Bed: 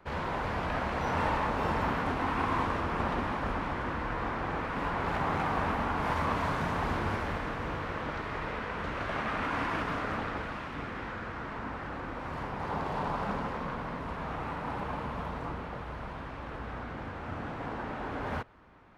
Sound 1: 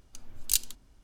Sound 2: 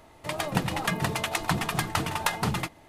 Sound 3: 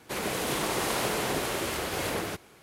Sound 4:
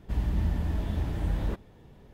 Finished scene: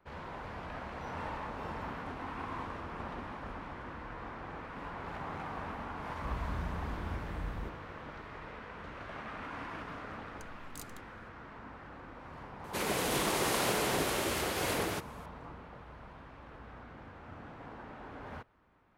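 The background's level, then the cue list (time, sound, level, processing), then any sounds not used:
bed -10.5 dB
6.14 s: add 4 -11 dB
10.26 s: add 1 -5.5 dB + compression 3:1, threshold -43 dBFS
12.64 s: add 3 -2 dB
not used: 2

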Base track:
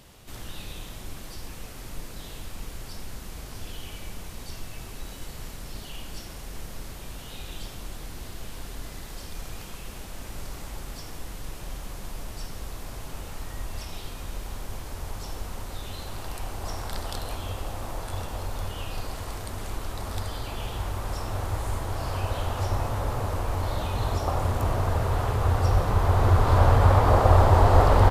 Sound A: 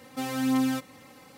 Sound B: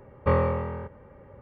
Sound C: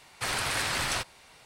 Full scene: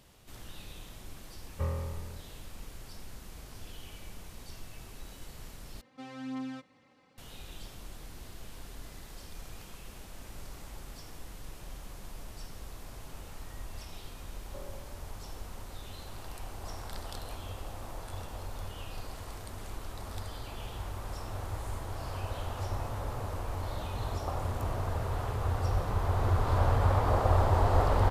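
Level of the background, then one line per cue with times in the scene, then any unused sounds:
base track -8 dB
1.33 s: add B -17.5 dB + peaking EQ 67 Hz +14.5 dB 1.4 oct
5.81 s: replace with A -13 dB + low-pass 4.6 kHz
14.27 s: add B -14.5 dB + two resonant band-passes 460 Hz, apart 0.85 oct
not used: C

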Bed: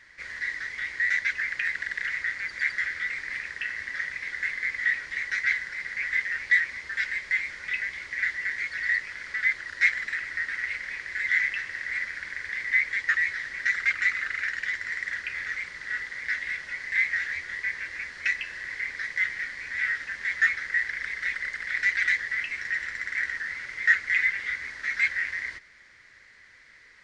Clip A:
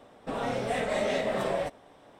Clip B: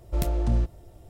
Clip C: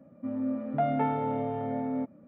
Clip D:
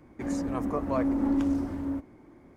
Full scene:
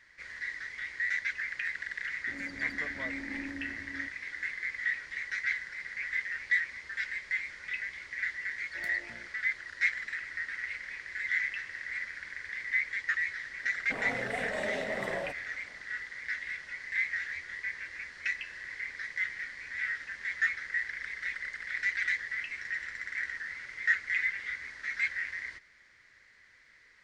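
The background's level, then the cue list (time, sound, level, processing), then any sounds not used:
bed -6.5 dB
2.08 s: add D -16 dB
8.62 s: add B -15.5 dB + frequency weighting A
13.63 s: add A -7 dB
not used: C

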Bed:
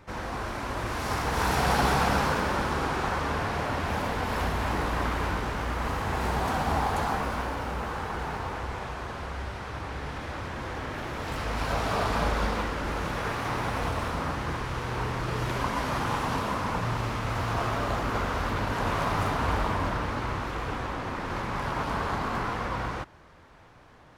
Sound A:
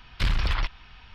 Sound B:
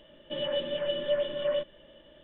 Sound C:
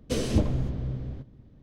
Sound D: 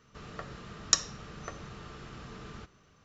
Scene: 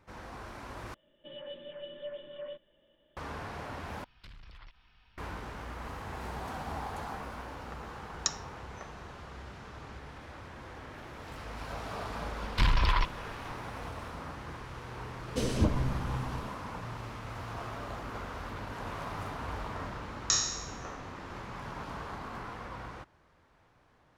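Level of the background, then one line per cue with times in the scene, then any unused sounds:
bed -11.5 dB
0.94 s: replace with B -13.5 dB
4.04 s: replace with A -15 dB + compression 12:1, threshold -32 dBFS
7.33 s: add D -7 dB
12.38 s: add A -1.5 dB + peaking EQ 1 kHz +12.5 dB 0.22 oct
15.26 s: add C -3.5 dB
19.37 s: add D -7.5 dB + spectral sustain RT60 0.91 s

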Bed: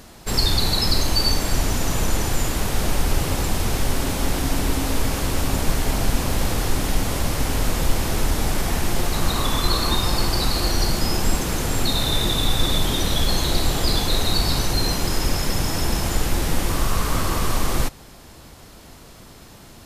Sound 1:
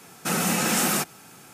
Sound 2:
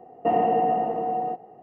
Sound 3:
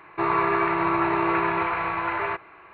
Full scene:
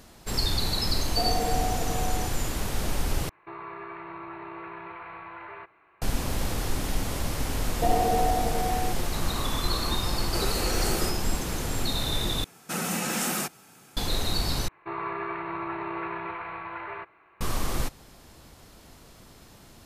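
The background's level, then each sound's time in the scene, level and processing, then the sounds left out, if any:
bed -7 dB
0.92 s: add 2 -8 dB
3.29 s: replace with 3 -12.5 dB + compression 2:1, threshold -27 dBFS
7.57 s: add 2 -3.5 dB
10.08 s: add 1 -9.5 dB + resonant high-pass 390 Hz, resonance Q 4.1
12.44 s: replace with 1 -5.5 dB
14.68 s: replace with 3 -10.5 dB

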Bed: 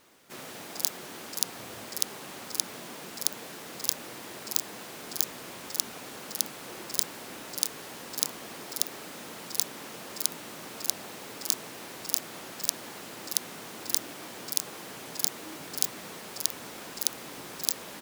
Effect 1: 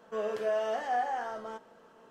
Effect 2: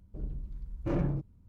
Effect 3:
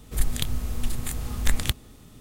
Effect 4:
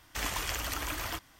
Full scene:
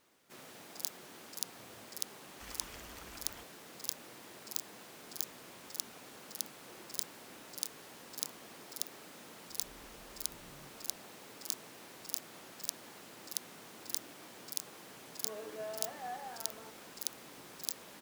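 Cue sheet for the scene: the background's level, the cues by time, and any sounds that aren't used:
bed -10 dB
2.25 s: add 4 -17.5 dB
9.48 s: add 2 -16.5 dB + compression 2.5:1, threshold -45 dBFS
15.13 s: add 1 -13 dB
not used: 3

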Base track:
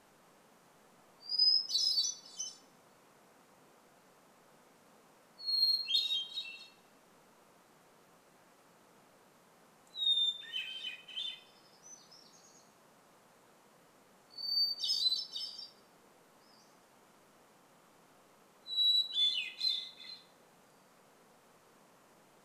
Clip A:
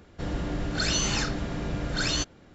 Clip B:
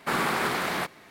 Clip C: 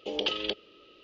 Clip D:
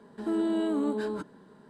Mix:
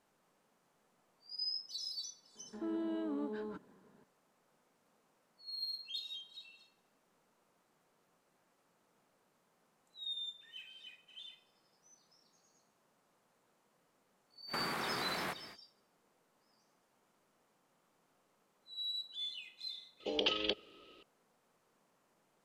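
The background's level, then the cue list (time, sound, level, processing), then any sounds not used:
base track -11.5 dB
2.35 s: add D -10.5 dB + low-pass 3.7 kHz
14.47 s: add B -2.5 dB, fades 0.05 s + compression 12:1, threshold -32 dBFS
20.00 s: add C -3.5 dB
not used: A

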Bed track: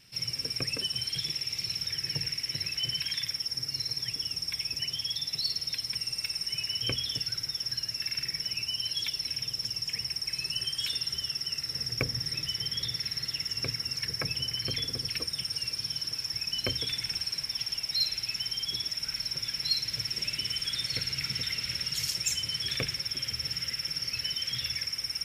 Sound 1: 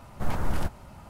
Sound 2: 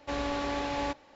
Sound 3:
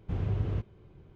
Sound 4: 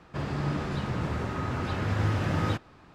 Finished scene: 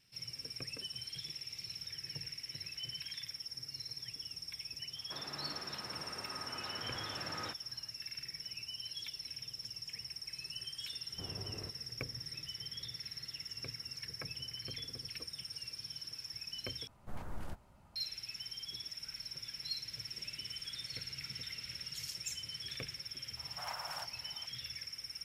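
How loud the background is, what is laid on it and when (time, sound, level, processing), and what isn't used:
bed track -12 dB
4.96 s: add 4 -8.5 dB + high-pass 910 Hz 6 dB/octave
11.09 s: add 3 -6.5 dB + high-pass 370 Hz 6 dB/octave
16.87 s: replace with 1 -16 dB
23.37 s: add 1 -7 dB + steep high-pass 660 Hz
not used: 2

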